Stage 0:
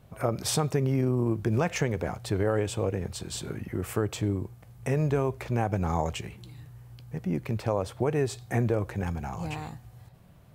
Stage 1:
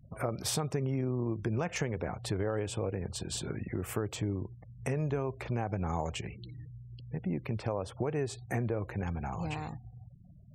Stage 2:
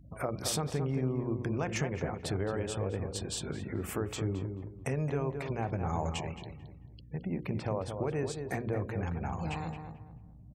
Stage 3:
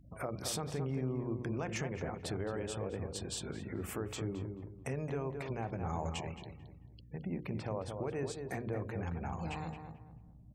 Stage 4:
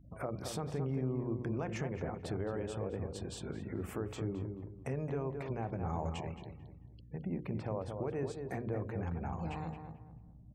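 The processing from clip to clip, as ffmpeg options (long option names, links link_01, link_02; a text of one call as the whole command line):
ffmpeg -i in.wav -af "afftfilt=real='re*gte(hypot(re,im),0.00398)':imag='im*gte(hypot(re,im),0.00398)':win_size=1024:overlap=0.75,acompressor=threshold=-33dB:ratio=2" out.wav
ffmpeg -i in.wav -filter_complex "[0:a]bandreject=frequency=60:width_type=h:width=6,bandreject=frequency=120:width_type=h:width=6,bandreject=frequency=180:width_type=h:width=6,bandreject=frequency=240:width_type=h:width=6,bandreject=frequency=300:width_type=h:width=6,bandreject=frequency=360:width_type=h:width=6,bandreject=frequency=420:width_type=h:width=6,bandreject=frequency=480:width_type=h:width=6,bandreject=frequency=540:width_type=h:width=6,asplit=2[link_01][link_02];[link_02]adelay=220,lowpass=frequency=1500:poles=1,volume=-6dB,asplit=2[link_03][link_04];[link_04]adelay=220,lowpass=frequency=1500:poles=1,volume=0.32,asplit=2[link_05][link_06];[link_06]adelay=220,lowpass=frequency=1500:poles=1,volume=0.32,asplit=2[link_07][link_08];[link_08]adelay=220,lowpass=frequency=1500:poles=1,volume=0.32[link_09];[link_01][link_03][link_05][link_07][link_09]amix=inputs=5:normalize=0,aeval=exprs='val(0)+0.00178*(sin(2*PI*60*n/s)+sin(2*PI*2*60*n/s)/2+sin(2*PI*3*60*n/s)/3+sin(2*PI*4*60*n/s)/4+sin(2*PI*5*60*n/s)/5)':channel_layout=same" out.wav
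ffmpeg -i in.wav -filter_complex "[0:a]bandreject=frequency=50:width_type=h:width=6,bandreject=frequency=100:width_type=h:width=6,bandreject=frequency=150:width_type=h:width=6,asplit=2[link_01][link_02];[link_02]alimiter=level_in=1.5dB:limit=-24dB:level=0:latency=1,volume=-1.5dB,volume=-3dB[link_03];[link_01][link_03]amix=inputs=2:normalize=0,volume=-8dB" out.wav
ffmpeg -i in.wav -af "highshelf=frequency=2100:gain=-9.5,volume=1dB" out.wav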